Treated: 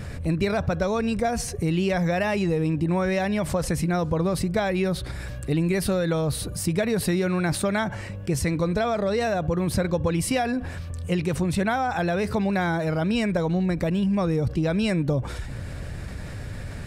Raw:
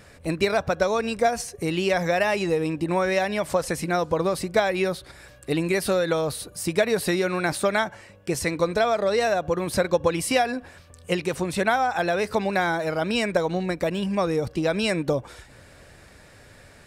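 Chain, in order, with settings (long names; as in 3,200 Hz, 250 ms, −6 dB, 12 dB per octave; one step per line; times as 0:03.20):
bass and treble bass +13 dB, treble −2 dB
envelope flattener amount 50%
level −6.5 dB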